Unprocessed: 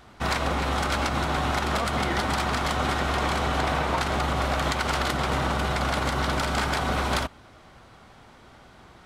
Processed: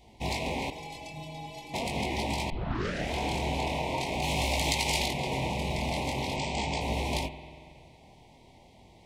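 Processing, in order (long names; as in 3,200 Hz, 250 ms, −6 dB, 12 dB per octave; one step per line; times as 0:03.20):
loose part that buzzes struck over −38 dBFS, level −23 dBFS
elliptic band-stop filter 940–2,100 Hz, stop band 80 dB
0:04.22–0:05.06: high-shelf EQ 2,500 Hz +10.5 dB
0:06.34–0:06.81: Butterworth low-pass 8,500 Hz 96 dB per octave
chorus effect 0.43 Hz, delay 18 ms, depth 7.1 ms
0:00.70–0:01.74: stiff-string resonator 150 Hz, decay 0.26 s, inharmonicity 0.008
0:02.50: tape start 0.63 s
spring reverb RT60 2.2 s, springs 46 ms, chirp 35 ms, DRR 11.5 dB
level −1 dB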